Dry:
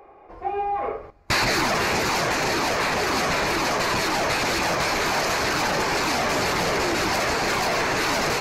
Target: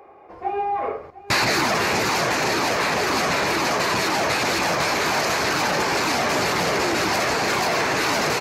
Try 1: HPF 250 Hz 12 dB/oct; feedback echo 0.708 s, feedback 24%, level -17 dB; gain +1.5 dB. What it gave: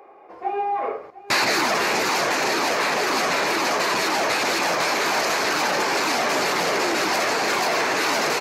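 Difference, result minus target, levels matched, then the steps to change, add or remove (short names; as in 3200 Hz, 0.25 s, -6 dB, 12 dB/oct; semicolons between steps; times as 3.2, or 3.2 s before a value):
125 Hz band -9.0 dB
change: HPF 87 Hz 12 dB/oct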